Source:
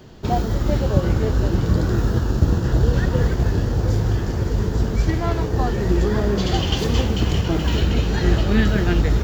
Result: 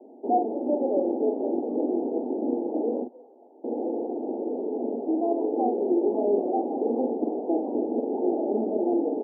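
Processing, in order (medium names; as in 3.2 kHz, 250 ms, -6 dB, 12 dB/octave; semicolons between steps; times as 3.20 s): 3.03–3.64 s: differentiator; Chebyshev band-pass 240–840 Hz, order 5; doubling 44 ms -5.5 dB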